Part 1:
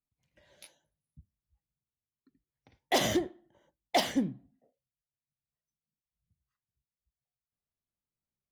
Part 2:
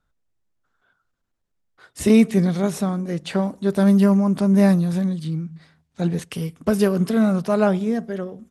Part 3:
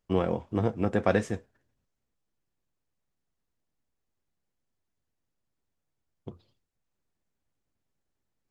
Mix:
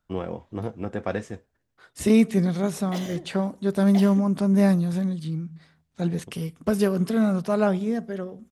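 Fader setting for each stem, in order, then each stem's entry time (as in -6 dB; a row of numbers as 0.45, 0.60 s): -9.5, -3.5, -4.0 dB; 0.00, 0.00, 0.00 s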